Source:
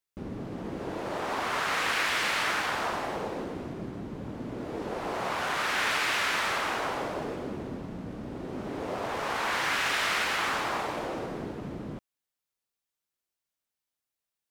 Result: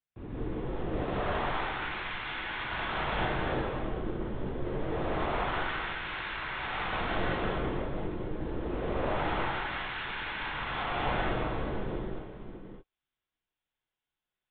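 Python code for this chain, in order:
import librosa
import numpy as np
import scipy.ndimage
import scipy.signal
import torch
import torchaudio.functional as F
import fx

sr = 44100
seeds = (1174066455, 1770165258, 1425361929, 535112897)

y = x + 10.0 ** (-9.0 / 20.0) * np.pad(x, (int(615 * sr / 1000.0), 0))[:len(x)]
y = fx.lpc_vocoder(y, sr, seeds[0], excitation='pitch_kept', order=10)
y = fx.over_compress(y, sr, threshold_db=-32.0, ratio=-0.5)
y = fx.rev_gated(y, sr, seeds[1], gate_ms=230, shape='rising', drr_db=-7.0)
y = y * librosa.db_to_amplitude(-7.0)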